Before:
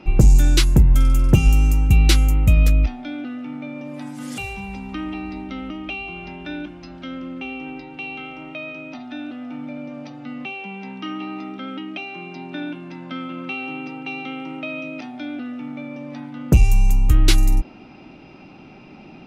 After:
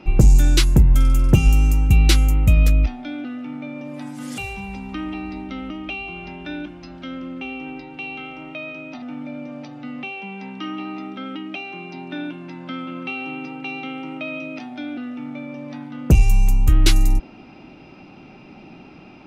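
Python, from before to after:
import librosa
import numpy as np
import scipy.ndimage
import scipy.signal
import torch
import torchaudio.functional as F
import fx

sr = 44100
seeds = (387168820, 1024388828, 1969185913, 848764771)

y = fx.edit(x, sr, fx.cut(start_s=9.02, length_s=0.42), tone=tone)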